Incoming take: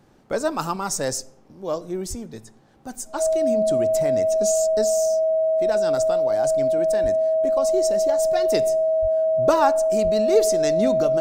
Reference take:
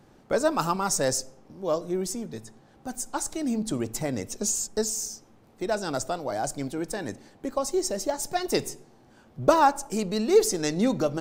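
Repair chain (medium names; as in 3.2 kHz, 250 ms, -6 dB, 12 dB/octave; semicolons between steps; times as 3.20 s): band-stop 640 Hz, Q 30; de-plosive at 2.09/7.02/9.01/10.03 s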